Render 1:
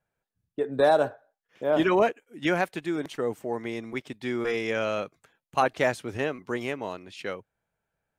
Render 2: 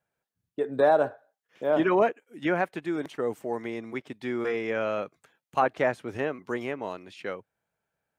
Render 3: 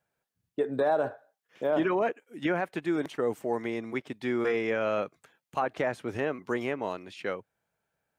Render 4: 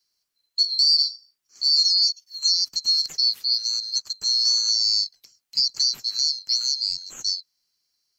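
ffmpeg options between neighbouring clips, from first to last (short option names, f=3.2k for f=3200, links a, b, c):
-filter_complex "[0:a]highpass=f=130:p=1,acrossover=split=2400[a][b];[b]acompressor=threshold=-51dB:ratio=6[c];[a][c]amix=inputs=2:normalize=0"
-af "alimiter=limit=-19.5dB:level=0:latency=1:release=58,volume=1.5dB"
-filter_complex "[0:a]afftfilt=real='real(if(lt(b,736),b+184*(1-2*mod(floor(b/184),2)),b),0)':imag='imag(if(lt(b,736),b+184*(1-2*mod(floor(b/184),2)),b),0)':win_size=2048:overlap=0.75,acrossover=split=150|690|3800[a][b][c][d];[b]acrusher=samples=38:mix=1:aa=0.000001:lfo=1:lforange=22.8:lforate=3.4[e];[a][e][c][d]amix=inputs=4:normalize=0,volume=7dB"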